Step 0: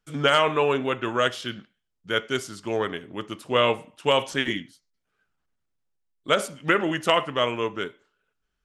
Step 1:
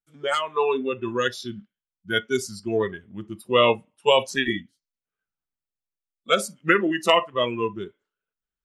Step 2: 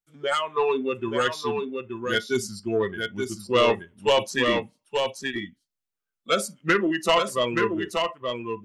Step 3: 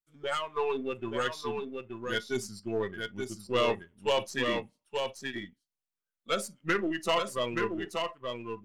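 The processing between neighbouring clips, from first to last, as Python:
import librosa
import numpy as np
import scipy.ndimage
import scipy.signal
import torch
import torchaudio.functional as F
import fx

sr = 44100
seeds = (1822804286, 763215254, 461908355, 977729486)

y1 = fx.rider(x, sr, range_db=3, speed_s=2.0)
y1 = fx.noise_reduce_blind(y1, sr, reduce_db=20)
y1 = F.gain(torch.from_numpy(y1), 3.0).numpy()
y2 = 10.0 ** (-12.0 / 20.0) * np.tanh(y1 / 10.0 ** (-12.0 / 20.0))
y2 = y2 + 10.0 ** (-5.0 / 20.0) * np.pad(y2, (int(876 * sr / 1000.0), 0))[:len(y2)]
y3 = np.where(y2 < 0.0, 10.0 ** (-3.0 / 20.0) * y2, y2)
y3 = F.gain(torch.from_numpy(y3), -6.0).numpy()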